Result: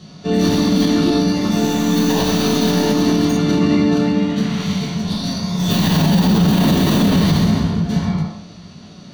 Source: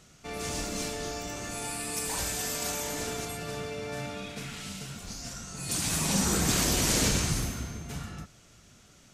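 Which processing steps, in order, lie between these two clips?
tracing distortion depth 0.21 ms; high shelf 3400 Hz +7.5 dB; reverb RT60 0.75 s, pre-delay 3 ms, DRR -6.5 dB; formant shift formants -4 st; low shelf 170 Hz +6.5 dB; limiter -5.5 dBFS, peak gain reduction 11 dB; gain -1 dB

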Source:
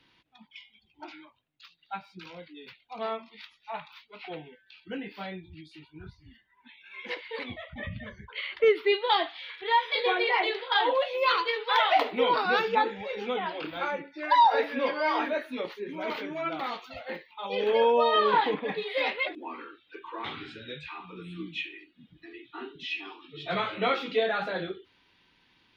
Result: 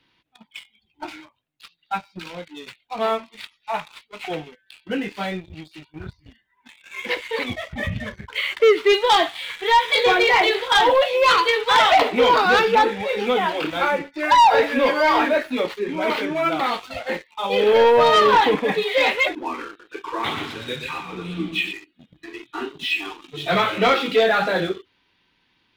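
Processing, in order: sample leveller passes 2; 19.67–21.73 warbling echo 0.121 s, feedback 46%, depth 96 cents, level -9 dB; gain +3.5 dB

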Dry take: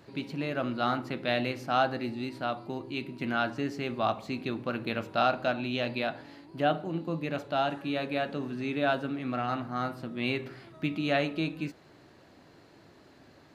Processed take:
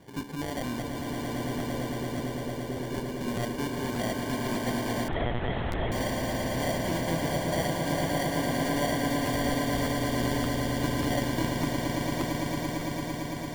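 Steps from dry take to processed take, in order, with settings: in parallel at -2 dB: compressor, threshold -41 dBFS, peak gain reduction 19 dB; on the sum: limiter -19.5 dBFS, peak gain reduction 7 dB; sample-and-hold 34×; 0.82–2.8 ladder low-pass 540 Hz, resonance 45%; on a send: swelling echo 0.113 s, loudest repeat 8, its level -6.5 dB; 5.08–5.92 on the sum: monotone LPC vocoder at 8 kHz 120 Hz; crackling interface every 0.59 s, samples 512, repeat, from 0.99; gain -2.5 dB

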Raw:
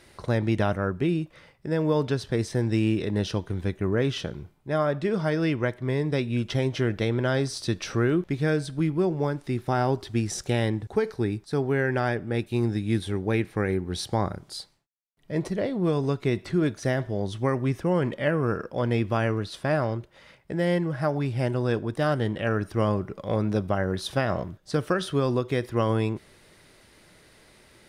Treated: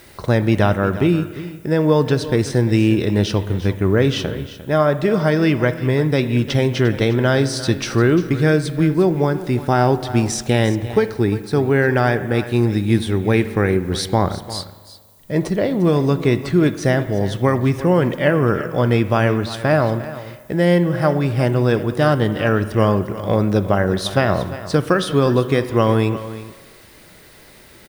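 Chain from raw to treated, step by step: echo 0.35 s -14.5 dB; added noise violet -61 dBFS; spring tank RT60 1.7 s, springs 40/58 ms, chirp 30 ms, DRR 13.5 dB; gain +8.5 dB

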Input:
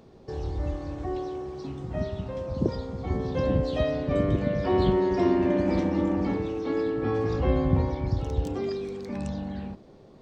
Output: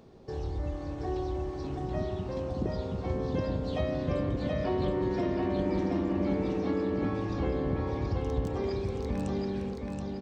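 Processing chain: compressor, threshold -26 dBFS, peak gain reduction 9.5 dB; on a send: feedback echo 0.726 s, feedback 42%, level -3 dB; on the sum: gain -2 dB

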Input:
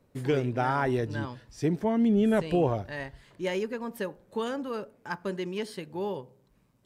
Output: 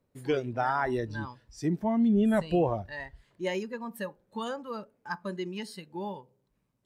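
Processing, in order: spectral noise reduction 10 dB

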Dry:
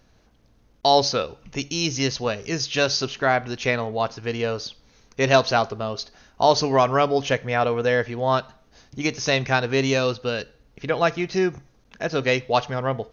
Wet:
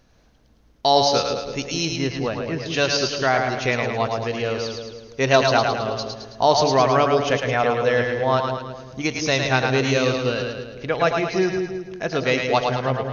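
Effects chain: 1.85–2.66 air absorption 320 m; split-band echo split 560 Hz, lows 0.17 s, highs 0.108 s, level -4 dB

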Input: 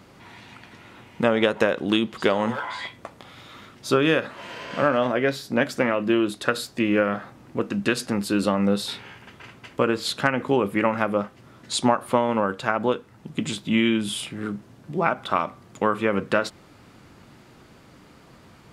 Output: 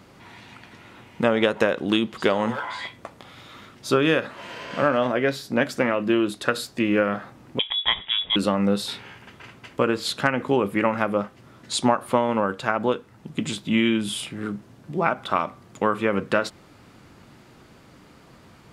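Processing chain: 7.59–8.36 inverted band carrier 3600 Hz

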